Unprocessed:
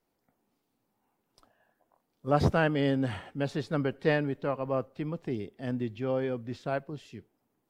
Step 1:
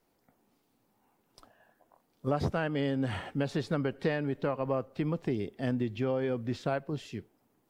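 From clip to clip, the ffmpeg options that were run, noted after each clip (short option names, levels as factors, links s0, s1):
-af "acompressor=threshold=0.0251:ratio=6,volume=1.88"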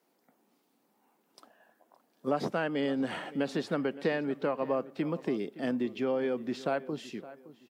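-filter_complex "[0:a]highpass=f=190:w=0.5412,highpass=f=190:w=1.3066,asplit=2[s0][s1];[s1]adelay=566,lowpass=f=3100:p=1,volume=0.141,asplit=2[s2][s3];[s3]adelay=566,lowpass=f=3100:p=1,volume=0.32,asplit=2[s4][s5];[s5]adelay=566,lowpass=f=3100:p=1,volume=0.32[s6];[s0][s2][s4][s6]amix=inputs=4:normalize=0,volume=1.12"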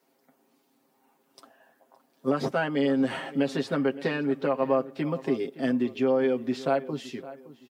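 -af "aecho=1:1:7.5:0.75,volume=1.26"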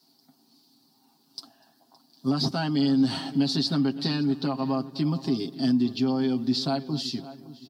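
-filter_complex "[0:a]firequalizer=gain_entry='entry(110,0);entry(310,-5);entry(500,-24);entry(720,-8);entry(1200,-12);entry(2100,-18);entry(4500,12);entry(6600,-4)':delay=0.05:min_phase=1,asplit=2[s0][s1];[s1]alimiter=level_in=1.78:limit=0.0631:level=0:latency=1,volume=0.562,volume=0.708[s2];[s0][s2]amix=inputs=2:normalize=0,asplit=2[s3][s4];[s4]adelay=245,lowpass=f=1900:p=1,volume=0.106,asplit=2[s5][s6];[s6]adelay=245,lowpass=f=1900:p=1,volume=0.51,asplit=2[s7][s8];[s8]adelay=245,lowpass=f=1900:p=1,volume=0.51,asplit=2[s9][s10];[s10]adelay=245,lowpass=f=1900:p=1,volume=0.51[s11];[s3][s5][s7][s9][s11]amix=inputs=5:normalize=0,volume=1.68"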